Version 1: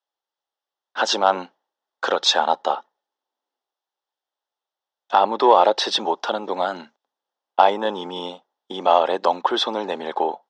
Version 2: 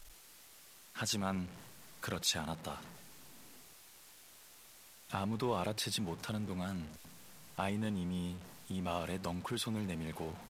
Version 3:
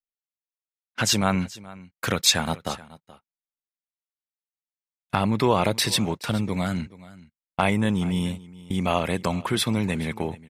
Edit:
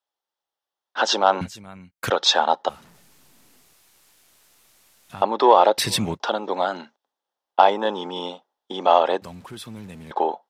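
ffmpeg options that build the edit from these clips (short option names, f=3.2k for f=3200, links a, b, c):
-filter_complex "[2:a]asplit=2[a][b];[1:a]asplit=2[c][d];[0:a]asplit=5[e][f][g][h][i];[e]atrim=end=1.412[j];[a]atrim=start=1.408:end=2.102[k];[f]atrim=start=2.098:end=2.692[l];[c]atrim=start=2.688:end=5.222[m];[g]atrim=start=5.218:end=5.782[n];[b]atrim=start=5.778:end=6.202[o];[h]atrim=start=6.198:end=9.222[p];[d]atrim=start=9.218:end=10.112[q];[i]atrim=start=10.108[r];[j][k]acrossfade=d=0.004:c1=hsin:c2=hsin[s];[s][l]acrossfade=d=0.004:c1=hsin:c2=hsin[t];[t][m]acrossfade=d=0.004:c1=hsin:c2=hsin[u];[u][n]acrossfade=d=0.004:c1=hsin:c2=hsin[v];[v][o]acrossfade=d=0.004:c1=hsin:c2=hsin[w];[w][p]acrossfade=d=0.004:c1=hsin:c2=hsin[x];[x][q]acrossfade=d=0.004:c1=hsin:c2=hsin[y];[y][r]acrossfade=d=0.004:c1=hsin:c2=hsin"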